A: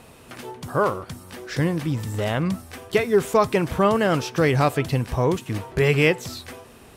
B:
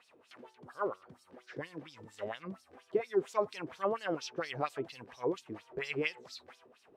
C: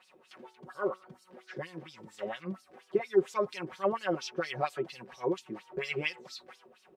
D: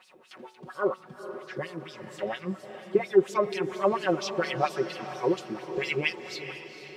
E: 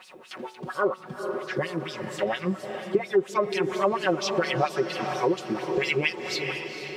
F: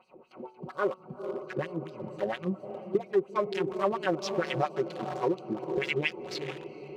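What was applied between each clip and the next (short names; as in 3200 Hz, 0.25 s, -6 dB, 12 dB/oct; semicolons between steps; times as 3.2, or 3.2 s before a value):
LFO band-pass sine 4.3 Hz 340–5400 Hz; gain -7 dB
comb 5.4 ms, depth 96%
diffused feedback echo 0.461 s, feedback 50%, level -11 dB; gain +5 dB
compressor 2.5:1, threshold -32 dBFS, peak gain reduction 12.5 dB; gain +8.5 dB
Wiener smoothing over 25 samples; gain -3.5 dB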